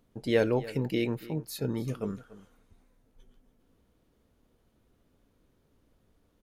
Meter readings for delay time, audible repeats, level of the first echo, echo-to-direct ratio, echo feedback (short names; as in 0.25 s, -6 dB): 0.287 s, 1, -18.0 dB, -18.0 dB, no steady repeat